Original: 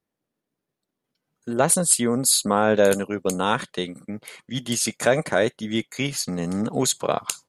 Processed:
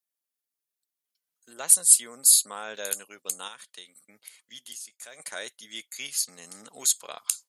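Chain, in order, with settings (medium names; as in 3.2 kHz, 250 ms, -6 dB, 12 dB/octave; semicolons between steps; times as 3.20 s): differentiator; 3.47–5.20 s: compression 4:1, threshold -43 dBFS, peak gain reduction 19 dB; trim +1 dB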